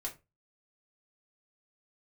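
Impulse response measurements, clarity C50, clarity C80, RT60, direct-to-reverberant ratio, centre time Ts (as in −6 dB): 14.5 dB, 22.0 dB, 0.25 s, −2.5 dB, 13 ms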